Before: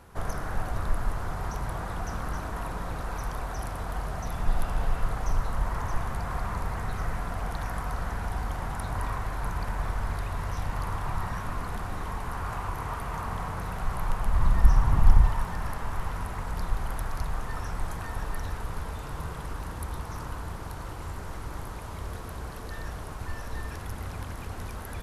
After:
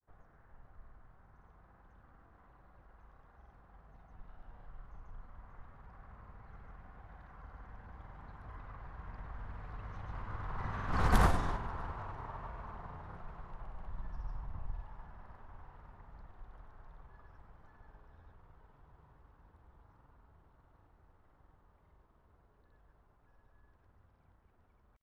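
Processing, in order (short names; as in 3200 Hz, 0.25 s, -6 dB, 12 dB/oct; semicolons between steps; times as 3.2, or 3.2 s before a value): Doppler pass-by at 11.18, 18 m/s, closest 1.1 m; bell 2400 Hz -3 dB 0.41 oct; in parallel at -0.5 dB: compressor, threshold -59 dBFS, peak gain reduction 25.5 dB; on the sum: low-pass opened by the level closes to 2300 Hz, open at -29.5 dBFS; grains, pitch spread up and down by 0 st; gain +11 dB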